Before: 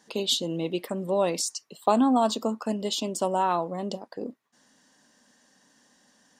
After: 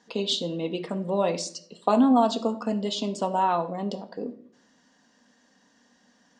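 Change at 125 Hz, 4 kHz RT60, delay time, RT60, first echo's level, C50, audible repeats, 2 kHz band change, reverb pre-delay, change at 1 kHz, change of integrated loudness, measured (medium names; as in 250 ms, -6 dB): +1.5 dB, 0.40 s, no echo, 0.55 s, no echo, 14.5 dB, no echo, +0.5 dB, 4 ms, +1.0 dB, +0.5 dB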